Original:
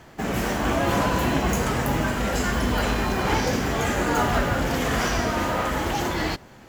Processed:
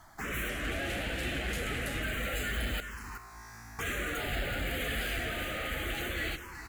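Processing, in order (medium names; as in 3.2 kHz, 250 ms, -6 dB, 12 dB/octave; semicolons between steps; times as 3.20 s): coarse spectral quantiser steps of 15 dB; peaking EQ 180 Hz -14 dB 2.4 oct; hard clipper -28.5 dBFS, distortion -9 dB; 2.80–3.79 s: feedback comb 56 Hz, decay 1.7 s, harmonics all, mix 100%; on a send: delay 374 ms -10 dB; on the sum: touch-sensitive phaser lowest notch 440 Hz, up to 3 kHz, full sweep at -20.5 dBFS; 0.49–2.03 s: decimation joined by straight lines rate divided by 2×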